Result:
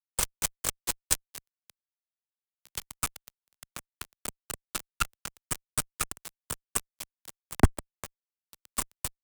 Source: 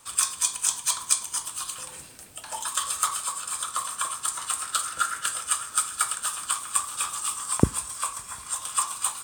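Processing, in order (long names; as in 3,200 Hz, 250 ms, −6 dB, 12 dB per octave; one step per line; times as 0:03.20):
harmonic generator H 3 −10 dB, 4 −20 dB, 5 −28 dB, 7 −37 dB, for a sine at −1 dBFS
fuzz pedal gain 36 dB, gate −31 dBFS
multiband upward and downward expander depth 70%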